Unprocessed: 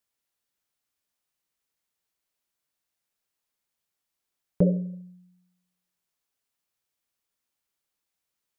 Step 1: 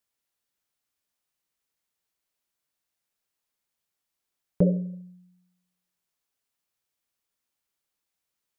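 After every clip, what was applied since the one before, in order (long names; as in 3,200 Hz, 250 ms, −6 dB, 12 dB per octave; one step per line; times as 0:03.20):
no processing that can be heard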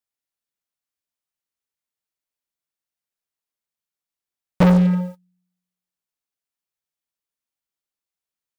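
leveller curve on the samples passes 5
in parallel at −8.5 dB: gain into a clipping stage and back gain 24 dB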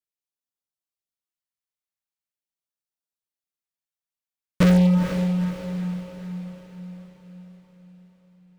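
leveller curve on the samples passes 2
auto-filter notch sine 0.43 Hz 310–2,400 Hz
feedback delay with all-pass diffusion 466 ms, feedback 53%, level −7 dB
level −3 dB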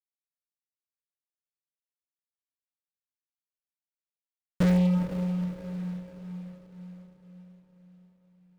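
running median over 41 samples
level −6 dB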